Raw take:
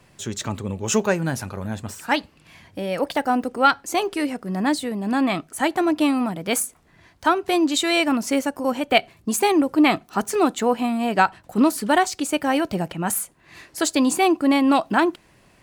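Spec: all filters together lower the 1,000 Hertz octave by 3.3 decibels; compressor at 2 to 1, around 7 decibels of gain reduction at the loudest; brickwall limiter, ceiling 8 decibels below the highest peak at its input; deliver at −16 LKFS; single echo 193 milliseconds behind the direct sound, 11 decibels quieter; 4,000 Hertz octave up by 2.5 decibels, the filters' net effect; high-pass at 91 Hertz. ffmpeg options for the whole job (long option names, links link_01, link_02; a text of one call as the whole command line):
ffmpeg -i in.wav -af "highpass=91,equalizer=frequency=1000:width_type=o:gain=-5,equalizer=frequency=4000:width_type=o:gain=3.5,acompressor=threshold=-26dB:ratio=2,alimiter=limit=-18.5dB:level=0:latency=1,aecho=1:1:193:0.282,volume=12.5dB" out.wav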